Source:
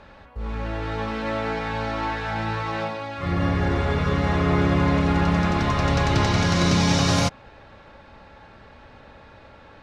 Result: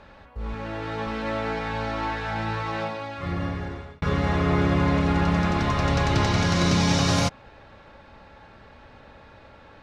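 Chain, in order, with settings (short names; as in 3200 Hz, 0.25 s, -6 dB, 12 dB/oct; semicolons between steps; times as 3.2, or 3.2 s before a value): 0.54–1.07 HPF 98 Hz; 3.05–4.02 fade out; gain -1.5 dB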